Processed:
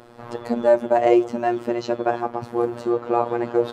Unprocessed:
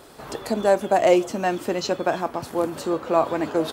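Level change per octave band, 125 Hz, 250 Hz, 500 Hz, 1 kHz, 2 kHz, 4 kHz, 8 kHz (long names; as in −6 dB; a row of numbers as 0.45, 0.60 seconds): −1.5 dB, +2.0 dB, +1.5 dB, +0.5 dB, −3.0 dB, −7.5 dB, below −10 dB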